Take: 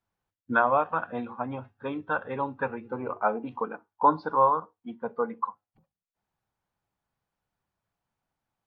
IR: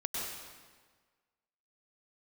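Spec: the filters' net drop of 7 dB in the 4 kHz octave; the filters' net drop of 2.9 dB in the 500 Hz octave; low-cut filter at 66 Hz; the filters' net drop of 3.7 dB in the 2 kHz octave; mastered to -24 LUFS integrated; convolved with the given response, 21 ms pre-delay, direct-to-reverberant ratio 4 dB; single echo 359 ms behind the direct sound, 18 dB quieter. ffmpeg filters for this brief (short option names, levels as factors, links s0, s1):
-filter_complex "[0:a]highpass=66,equalizer=f=500:t=o:g=-3,equalizer=f=2000:t=o:g=-4.5,equalizer=f=4000:t=o:g=-7,aecho=1:1:359:0.126,asplit=2[s0][s1];[1:a]atrim=start_sample=2205,adelay=21[s2];[s1][s2]afir=irnorm=-1:irlink=0,volume=0.398[s3];[s0][s3]amix=inputs=2:normalize=0,volume=1.88"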